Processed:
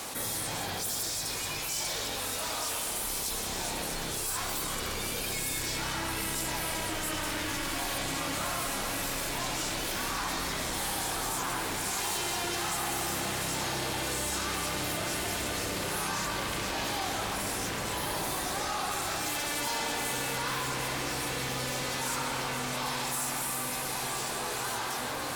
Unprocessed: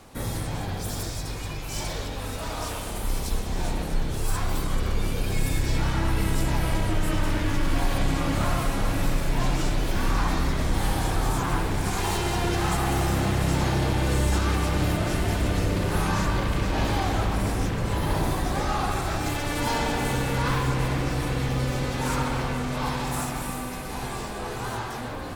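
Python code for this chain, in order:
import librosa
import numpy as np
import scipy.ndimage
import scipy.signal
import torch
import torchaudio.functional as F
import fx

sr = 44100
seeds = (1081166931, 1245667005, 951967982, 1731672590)

y = fx.riaa(x, sr, side='recording')
y = fx.echo_diffused(y, sr, ms=1264, feedback_pct=75, wet_db=-15.5)
y = 10.0 ** (-14.5 / 20.0) * (np.abs((y / 10.0 ** (-14.5 / 20.0) + 3.0) % 4.0 - 2.0) - 1.0)
y = fx.high_shelf(y, sr, hz=9400.0, db=-9.0)
y = fx.env_flatten(y, sr, amount_pct=70)
y = y * 10.0 ** (-7.5 / 20.0)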